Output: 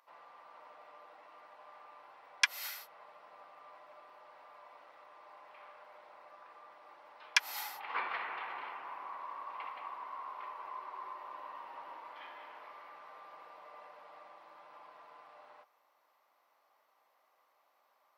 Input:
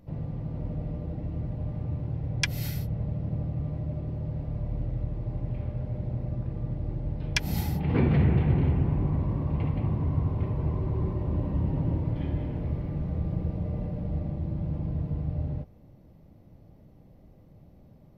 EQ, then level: ladder high-pass 970 Hz, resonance 55%; +8.5 dB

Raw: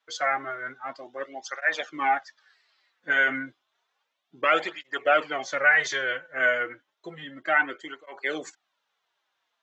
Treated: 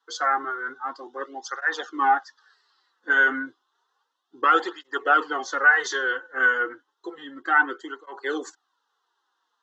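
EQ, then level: Bessel high-pass 250 Hz, order 2; distance through air 63 m; static phaser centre 620 Hz, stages 6; +7.5 dB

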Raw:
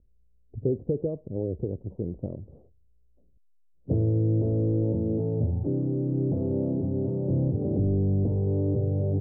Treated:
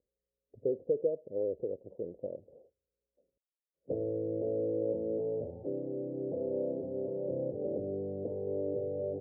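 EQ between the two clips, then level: band-pass filter 530 Hz, Q 4.3; +3.5 dB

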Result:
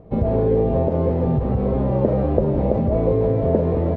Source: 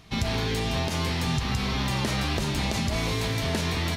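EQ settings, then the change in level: resonant low-pass 530 Hz, resonance Q 4.9; +6.5 dB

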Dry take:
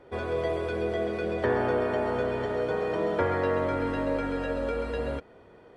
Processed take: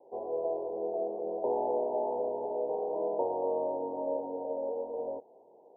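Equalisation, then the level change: high-pass 520 Hz 12 dB/octave; steep low-pass 930 Hz 96 dB/octave; 0.0 dB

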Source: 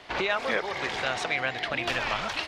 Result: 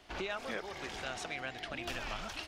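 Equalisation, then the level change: ten-band graphic EQ 125 Hz -10 dB, 250 Hz -4 dB, 500 Hz -10 dB, 1 kHz -10 dB, 2 kHz -11 dB, 4 kHz -9 dB, 8 kHz -4 dB; +1.0 dB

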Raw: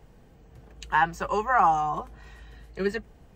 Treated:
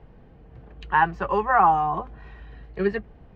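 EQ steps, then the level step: distance through air 330 m; +4.5 dB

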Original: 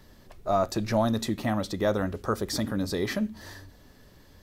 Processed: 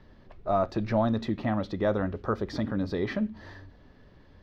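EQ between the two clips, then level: distance through air 270 m; 0.0 dB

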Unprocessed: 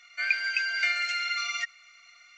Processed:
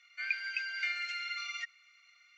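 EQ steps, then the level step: band-pass filter 2.6 kHz, Q 0.66; -7.5 dB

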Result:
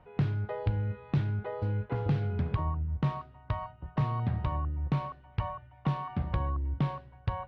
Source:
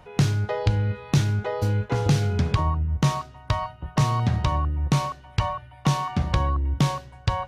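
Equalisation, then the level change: distance through air 430 m; -7.5 dB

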